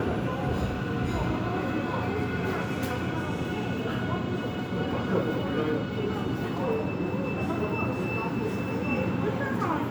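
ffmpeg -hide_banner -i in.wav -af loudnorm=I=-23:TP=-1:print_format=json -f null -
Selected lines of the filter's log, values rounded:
"input_i" : "-29.2",
"input_tp" : "-13.5",
"input_lra" : "0.7",
"input_thresh" : "-39.2",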